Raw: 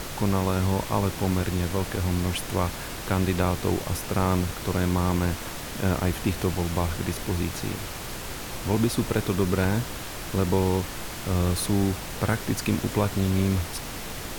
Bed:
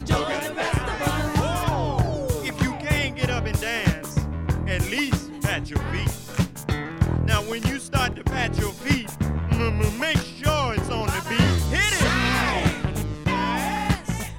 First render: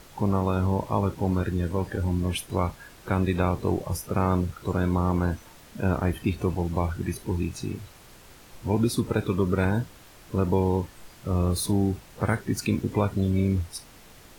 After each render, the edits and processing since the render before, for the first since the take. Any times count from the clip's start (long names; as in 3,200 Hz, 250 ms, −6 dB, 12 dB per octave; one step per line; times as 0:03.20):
noise reduction from a noise print 15 dB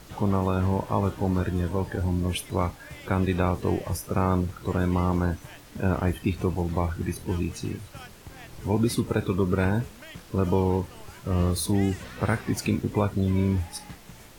mix in bed −21.5 dB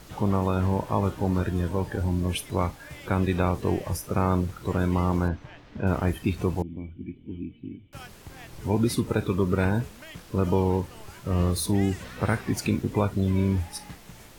0:05.28–0:05.87: high-frequency loss of the air 200 metres
0:06.62–0:07.93: formant resonators in series i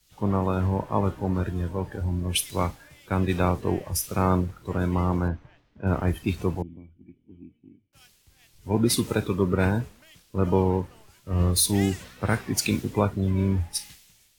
multiband upward and downward expander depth 100%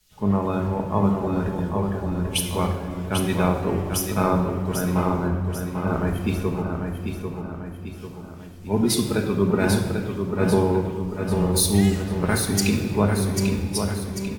on a send: repeating echo 793 ms, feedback 47%, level −6 dB
on the sum: rectangular room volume 2,300 cubic metres, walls mixed, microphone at 1.4 metres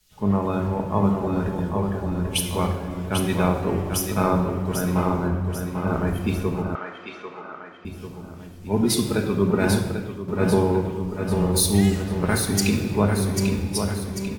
0:06.75–0:07.85: loudspeaker in its box 480–5,600 Hz, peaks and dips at 1,300 Hz +9 dB, 2,000 Hz +7 dB, 3,200 Hz +4 dB, 5,200 Hz −3 dB
0:09.76–0:10.28: fade out, to −7.5 dB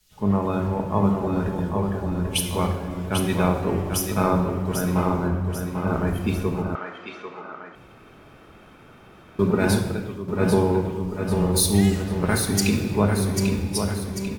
0:07.75–0:09.39: fill with room tone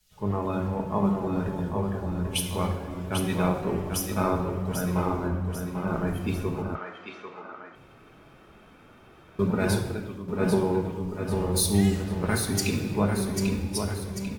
flanger 0.21 Hz, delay 1.2 ms, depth 9.1 ms, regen −61%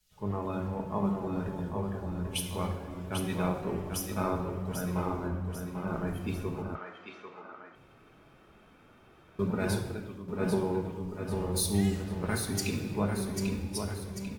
level −5.5 dB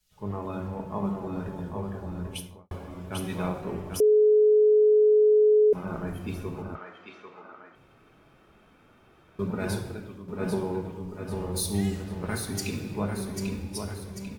0:02.24–0:02.71: fade out and dull
0:04.00–0:05.73: beep over 425 Hz −15.5 dBFS